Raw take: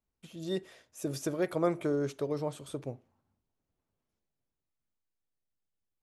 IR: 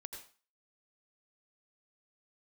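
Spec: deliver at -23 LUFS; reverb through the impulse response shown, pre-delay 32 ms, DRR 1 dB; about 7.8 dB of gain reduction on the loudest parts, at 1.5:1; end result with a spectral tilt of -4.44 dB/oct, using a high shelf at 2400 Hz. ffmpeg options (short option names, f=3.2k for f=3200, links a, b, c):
-filter_complex "[0:a]highshelf=f=2.4k:g=7.5,acompressor=threshold=-46dB:ratio=1.5,asplit=2[a][b];[1:a]atrim=start_sample=2205,adelay=32[c];[b][c]afir=irnorm=-1:irlink=0,volume=3dB[d];[a][d]amix=inputs=2:normalize=0,volume=15dB"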